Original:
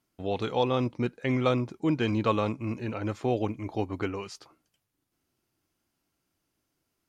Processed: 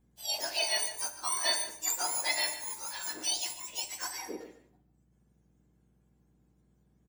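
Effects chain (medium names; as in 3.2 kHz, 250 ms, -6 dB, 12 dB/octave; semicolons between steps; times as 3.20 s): spectrum inverted on a logarithmic axis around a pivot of 1.5 kHz; echo from a far wall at 25 m, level -13 dB; on a send at -7.5 dB: reverberation RT60 0.70 s, pre-delay 8 ms; on the sum: hum 60 Hz, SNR 34 dB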